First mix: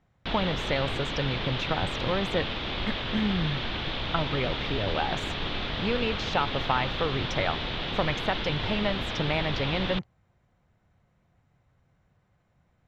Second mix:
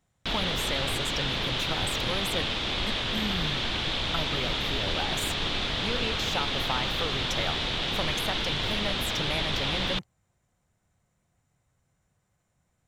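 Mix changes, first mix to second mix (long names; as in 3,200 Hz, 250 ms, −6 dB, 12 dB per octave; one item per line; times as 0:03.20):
speech −6.5 dB
master: remove high-frequency loss of the air 210 metres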